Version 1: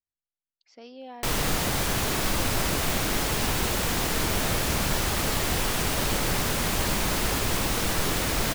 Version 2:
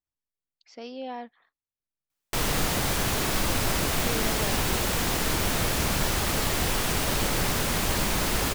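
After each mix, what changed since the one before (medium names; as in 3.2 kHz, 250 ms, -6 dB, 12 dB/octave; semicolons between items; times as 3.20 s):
speech +6.0 dB; background: entry +1.10 s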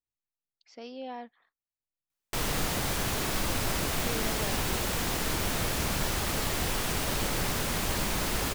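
speech -3.5 dB; background -4.0 dB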